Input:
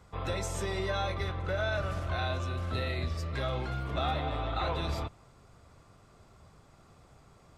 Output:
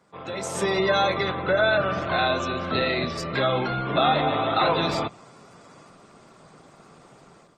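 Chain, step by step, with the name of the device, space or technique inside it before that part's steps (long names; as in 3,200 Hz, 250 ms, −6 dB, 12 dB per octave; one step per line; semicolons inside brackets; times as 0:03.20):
dynamic equaliser 100 Hz, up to +4 dB, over −48 dBFS, Q 2.1
noise-suppressed video call (high-pass filter 160 Hz 24 dB per octave; gate on every frequency bin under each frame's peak −30 dB strong; automatic gain control gain up to 12 dB; Opus 20 kbit/s 48,000 Hz)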